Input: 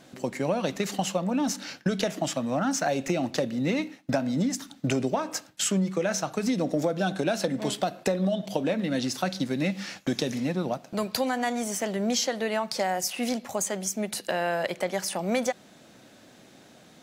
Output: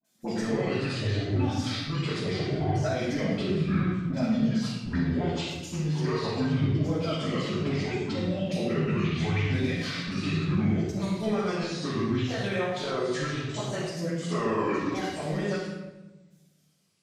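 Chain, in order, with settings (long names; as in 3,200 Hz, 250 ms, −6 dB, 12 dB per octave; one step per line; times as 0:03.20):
pitch shifter swept by a sawtooth −11.5 semitones, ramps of 1,355 ms
high-pass filter 75 Hz
first-order pre-emphasis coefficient 0.8
noise gate −52 dBFS, range −26 dB
high-shelf EQ 5,300 Hz +10.5 dB
compressor whose output falls as the input rises −41 dBFS, ratio −1
flanger 0.28 Hz, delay 4.5 ms, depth 8.7 ms, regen +60%
all-pass dispersion highs, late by 45 ms, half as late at 1,200 Hz
treble cut that deepens with the level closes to 600 Hz, closed at −35 dBFS
rectangular room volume 530 cubic metres, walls mixed, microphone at 8.6 metres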